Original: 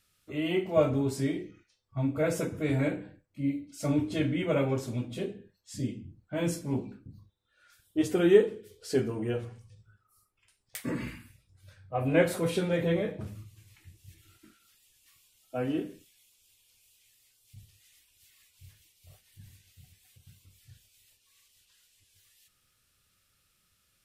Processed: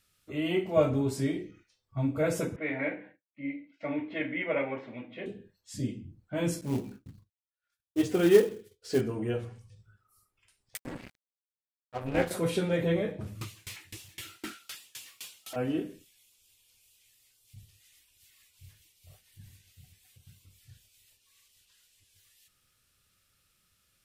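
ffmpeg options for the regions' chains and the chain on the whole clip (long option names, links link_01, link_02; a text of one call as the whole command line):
ffmpeg -i in.wav -filter_complex "[0:a]asettb=1/sr,asplit=3[link_01][link_02][link_03];[link_01]atrim=end=2.564[link_04];[link_02]atrim=start=2.56:end=5.26,asetpts=PTS-STARTPTS,afade=type=in:duration=0.004:curve=qsin,afade=type=out:start_time=2.696:duration=0.004:curve=qsin,highpass=340,equalizer=frequency=390:width_type=q:width=4:gain=-7,equalizer=frequency=1300:width_type=q:width=4:gain=-4,equalizer=frequency=2000:width_type=q:width=4:gain=10,lowpass=frequency=2800:width=0.5412,lowpass=frequency=2800:width=1.3066,agate=range=-33dB:threshold=-56dB:ratio=3:release=100:detection=peak[link_05];[link_03]atrim=start=5.256[link_06];[link_04][link_05]acrossfade=duration=0.004:curve1=hsin:curve2=qsin[link_07];[link_07][link_06]acrossfade=duration=0.004:curve1=qsin:curve2=hsin,asettb=1/sr,asplit=3[link_08][link_09][link_10];[link_08]atrim=end=6.614[link_11];[link_09]atrim=start=6.61:end=9.01,asetpts=PTS-STARTPTS,afade=type=in:duration=0.004:curve=qsin,afade=type=out:start_time=2.396:duration=0.004:curve=qsin,acrossover=split=7200[link_12][link_13];[link_13]acompressor=threshold=-56dB:ratio=4:attack=1:release=60[link_14];[link_12][link_14]amix=inputs=2:normalize=0,agate=range=-33dB:threshold=-48dB:ratio=3:release=100:detection=peak,acrusher=bits=5:mode=log:mix=0:aa=0.000001[link_15];[link_10]atrim=start=9.006[link_16];[link_11][link_15]acrossfade=duration=0.004:curve1=hsin:curve2=qsin[link_17];[link_17][link_16]acrossfade=duration=0.004:curve1=qsin:curve2=hsin,asettb=1/sr,asplit=3[link_18][link_19][link_20];[link_18]atrim=end=10.774[link_21];[link_19]atrim=start=10.77:end=12.31,asetpts=PTS-STARTPTS,afade=type=in:duration=0.004:curve=qsin,afade=type=out:start_time=1.536:duration=0.004:curve=qsin,aeval=exprs='sgn(val(0))*max(abs(val(0))-0.0141,0)':channel_layout=same,tremolo=f=260:d=0.75[link_22];[link_20]atrim=start=12.306[link_23];[link_21][link_22]acrossfade=duration=0.004:curve1=hsin:curve2=qsin[link_24];[link_24][link_23]acrossfade=duration=0.004:curve1=qsin:curve2=hsin,asettb=1/sr,asplit=3[link_25][link_26][link_27];[link_25]atrim=end=13.414[link_28];[link_26]atrim=start=13.41:end=15.56,asetpts=PTS-STARTPTS,afade=type=in:duration=0.004:curve=qsin,afade=type=out:start_time=2.146:duration=0.004:curve=qsin,asplit=2[link_29][link_30];[link_30]highpass=frequency=720:poles=1,volume=38dB,asoftclip=type=tanh:threshold=-24dB[link_31];[link_29][link_31]amix=inputs=2:normalize=0,lowpass=frequency=5300:poles=1,volume=-6dB,aeval=exprs='val(0)*pow(10,-28*if(lt(mod(3.9*n/s,1),2*abs(3.9)/1000),1-mod(3.9*n/s,1)/(2*abs(3.9)/1000),(mod(3.9*n/s,1)-2*abs(3.9)/1000)/(1-2*abs(3.9)/1000))/20)':channel_layout=same[link_32];[link_27]atrim=start=15.556[link_33];[link_28][link_32]acrossfade=duration=0.004:curve1=hsin:curve2=qsin[link_34];[link_34][link_33]acrossfade=duration=0.004:curve1=qsin:curve2=hsin" out.wav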